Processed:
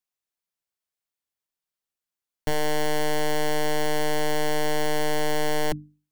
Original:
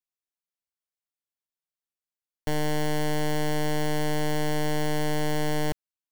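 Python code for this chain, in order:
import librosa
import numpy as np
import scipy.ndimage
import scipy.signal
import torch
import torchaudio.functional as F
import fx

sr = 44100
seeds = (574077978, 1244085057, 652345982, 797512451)

y = fx.hum_notches(x, sr, base_hz=50, count=6)
y = F.gain(torch.from_numpy(y), 3.5).numpy()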